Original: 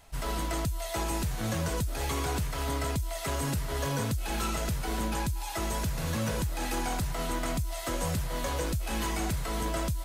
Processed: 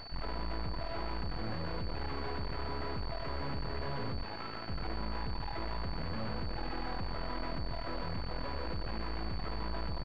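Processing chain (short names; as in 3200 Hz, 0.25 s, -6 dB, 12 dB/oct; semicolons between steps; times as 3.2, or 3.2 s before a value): 8.02–9.32 self-modulated delay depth 0.22 ms; feedback echo 0.125 s, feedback 42%, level -7.5 dB; hard clip -32.5 dBFS, distortion -8 dB; limiter -43.5 dBFS, peak gain reduction 11 dB; 4.23–4.69 HPF 430 Hz 6 dB/oct; half-wave rectifier; pulse-width modulation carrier 4500 Hz; gain +13 dB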